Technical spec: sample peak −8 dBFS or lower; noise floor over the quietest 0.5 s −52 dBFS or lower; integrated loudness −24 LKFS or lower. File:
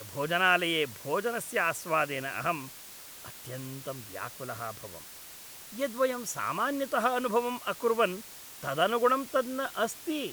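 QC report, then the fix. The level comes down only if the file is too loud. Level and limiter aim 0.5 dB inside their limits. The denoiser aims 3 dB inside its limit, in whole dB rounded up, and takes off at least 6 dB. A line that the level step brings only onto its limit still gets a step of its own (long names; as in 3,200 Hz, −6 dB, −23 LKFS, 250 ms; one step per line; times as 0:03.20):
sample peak −10.0 dBFS: in spec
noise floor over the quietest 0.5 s −47 dBFS: out of spec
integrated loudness −30.0 LKFS: in spec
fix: broadband denoise 8 dB, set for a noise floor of −47 dBFS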